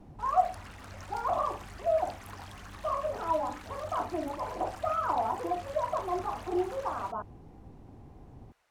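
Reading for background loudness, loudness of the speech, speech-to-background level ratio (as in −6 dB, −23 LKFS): −48.0 LKFS, −32.5 LKFS, 15.5 dB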